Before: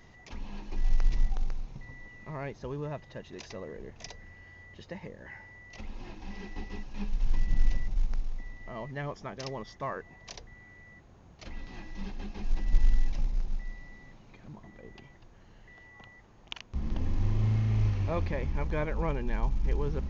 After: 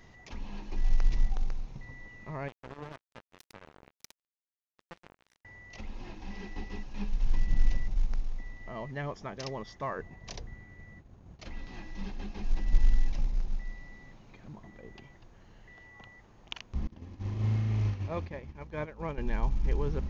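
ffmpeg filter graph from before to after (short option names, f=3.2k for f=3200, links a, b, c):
-filter_complex "[0:a]asettb=1/sr,asplit=3[a][b][c];[a]atrim=end=2.484[d];[b]atrim=start=2.48:end=5.45,asetpts=PTS-STARTPTS,afade=t=in:d=0.004:c=qsin,afade=t=out:st=2.966:d=0.004:c=qsin,bandreject=f=70.15:t=h:w=4,bandreject=f=140.3:t=h:w=4,bandreject=f=210.45:t=h:w=4,bandreject=f=280.6:t=h:w=4,bandreject=f=350.75:t=h:w=4,bandreject=f=420.9:t=h:w=4,bandreject=f=491.05:t=h:w=4,bandreject=f=561.2:t=h:w=4,bandreject=f=631.35:t=h:w=4,bandreject=f=701.5:t=h:w=4,bandreject=f=771.65:t=h:w=4,bandreject=f=841.8:t=h:w=4,bandreject=f=911.95:t=h:w=4,bandreject=f=982.1:t=h:w=4,bandreject=f=1.05225k:t=h:w=4,bandreject=f=1.1224k:t=h:w=4,bandreject=f=1.19255k:t=h:w=4,bandreject=f=1.2627k:t=h:w=4,bandreject=f=1.33285k:t=h:w=4,bandreject=f=1.403k:t=h:w=4,bandreject=f=1.47315k:t=h:w=4,bandreject=f=1.5433k:t=h:w=4,bandreject=f=1.61345k:t=h:w=4,bandreject=f=1.6836k:t=h:w=4,acompressor=threshold=-47dB:ratio=1.5:attack=3.2:release=140:knee=1:detection=peak,acrusher=bits=5:mix=0:aa=0.5[e];[c]atrim=start=5.446[f];[d][e]acrossfade=d=0.004:c1=hsin:c2=qsin[g];[g][f]acrossfade=d=0.004:c1=qsin:c2=hsin,asettb=1/sr,asplit=3[h][i][j];[h]atrim=end=9.984[k];[i]atrim=start=9.98:end=11.42,asetpts=PTS-STARTPTS,afade=t=in:d=0.004:c=qsin,afade=t=out:st=1.436:d=0.004:c=qsin,agate=range=-33dB:threshold=-51dB:ratio=3:release=100:detection=peak,lowshelf=f=360:g=8.5[l];[j]atrim=start=11.416[m];[k][l]acrossfade=d=0.004:c1=hsin:c2=qsin[n];[n][m]acrossfade=d=0.004:c1=qsin:c2=hsin,asettb=1/sr,asplit=3[o][p][q];[o]atrim=end=16.874[r];[p]atrim=start=16.87:end=19.18,asetpts=PTS-STARTPTS,afade=t=in:d=0.004:c=qsin,afade=t=out:st=2.306:d=0.004:c=qsin,highpass=69,agate=range=-33dB:threshold=-27dB:ratio=3:release=100:detection=peak[s];[q]atrim=start=19.176[t];[r][s]acrossfade=d=0.004:c1=hsin:c2=qsin[u];[u][t]acrossfade=d=0.004:c1=qsin:c2=hsin"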